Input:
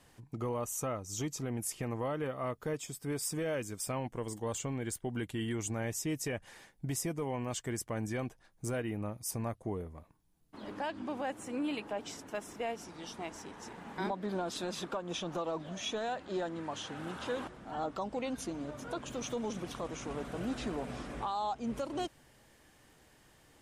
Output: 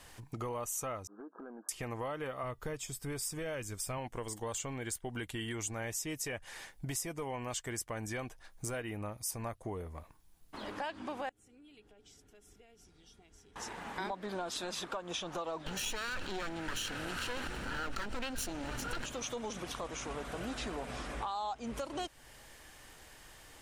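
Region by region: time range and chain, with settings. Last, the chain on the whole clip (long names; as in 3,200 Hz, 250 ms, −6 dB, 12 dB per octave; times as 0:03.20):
0:01.07–0:01.69: linear-phase brick-wall band-pass 200–1,700 Hz + downward compressor 10 to 1, threshold −46 dBFS
0:02.43–0:03.98: low-shelf EQ 120 Hz +11.5 dB + tuned comb filter 130 Hz, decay 0.21 s, harmonics odd, mix 30%
0:11.29–0:13.56: downward compressor 2 to 1, threshold −44 dBFS + guitar amp tone stack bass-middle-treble 10-0-1 + hollow resonant body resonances 420/750/1,400/3,300 Hz, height 12 dB, ringing for 85 ms
0:15.66–0:19.06: lower of the sound and its delayed copy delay 0.71 ms + parametric band 1,100 Hz −10.5 dB 0.32 octaves + envelope flattener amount 70%
whole clip: parametric band 170 Hz −12 dB 3 octaves; downward compressor 2 to 1, threshold −52 dBFS; low-shelf EQ 220 Hz +4.5 dB; level +9.5 dB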